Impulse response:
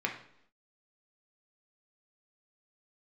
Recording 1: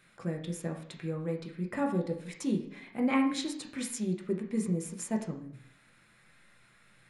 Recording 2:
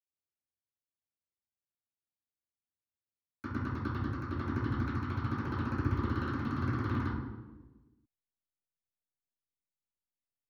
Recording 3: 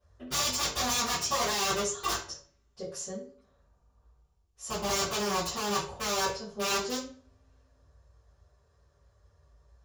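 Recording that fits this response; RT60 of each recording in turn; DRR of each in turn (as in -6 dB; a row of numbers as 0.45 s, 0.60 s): 1; 0.70 s, 1.2 s, 0.45 s; 0.5 dB, -16.0 dB, -16.5 dB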